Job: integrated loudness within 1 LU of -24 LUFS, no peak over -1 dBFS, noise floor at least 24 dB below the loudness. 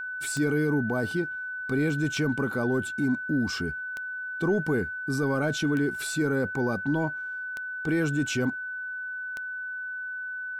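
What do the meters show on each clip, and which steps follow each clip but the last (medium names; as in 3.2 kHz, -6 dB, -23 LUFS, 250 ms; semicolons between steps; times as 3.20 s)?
clicks found 6; steady tone 1.5 kHz; tone level -32 dBFS; loudness -28.5 LUFS; peak level -16.0 dBFS; loudness target -24.0 LUFS
-> de-click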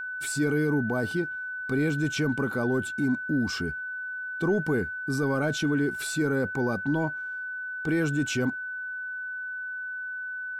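clicks found 0; steady tone 1.5 kHz; tone level -32 dBFS
-> band-stop 1.5 kHz, Q 30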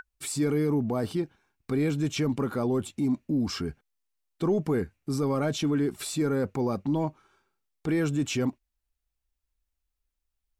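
steady tone not found; loudness -28.5 LUFS; peak level -17.5 dBFS; loudness target -24.0 LUFS
-> trim +4.5 dB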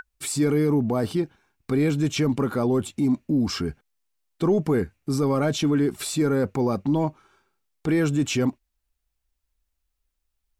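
loudness -24.0 LUFS; peak level -13.0 dBFS; noise floor -78 dBFS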